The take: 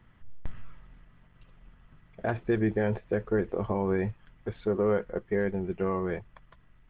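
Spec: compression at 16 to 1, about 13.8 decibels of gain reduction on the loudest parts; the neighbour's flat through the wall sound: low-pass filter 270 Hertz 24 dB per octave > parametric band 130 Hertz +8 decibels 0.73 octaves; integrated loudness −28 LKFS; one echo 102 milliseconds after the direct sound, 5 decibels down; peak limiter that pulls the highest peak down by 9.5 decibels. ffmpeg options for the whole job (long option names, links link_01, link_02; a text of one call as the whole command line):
ffmpeg -i in.wav -af "acompressor=threshold=-36dB:ratio=16,alimiter=level_in=11dB:limit=-24dB:level=0:latency=1,volume=-11dB,lowpass=frequency=270:width=0.5412,lowpass=frequency=270:width=1.3066,equalizer=frequency=130:width_type=o:width=0.73:gain=8,aecho=1:1:102:0.562,volume=19dB" out.wav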